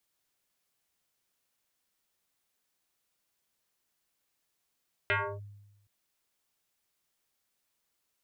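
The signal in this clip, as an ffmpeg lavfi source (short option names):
-f lavfi -i "aevalsrc='0.0708*pow(10,-3*t/1.03)*sin(2*PI*102*t+5.1*clip(1-t/0.3,0,1)*sin(2*PI*4.96*102*t))':d=0.77:s=44100"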